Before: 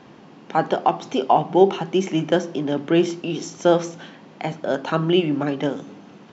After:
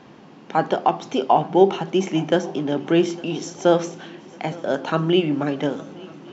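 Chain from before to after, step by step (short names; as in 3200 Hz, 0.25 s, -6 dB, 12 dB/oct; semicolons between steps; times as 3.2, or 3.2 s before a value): swung echo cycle 1.147 s, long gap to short 3:1, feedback 48%, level -23 dB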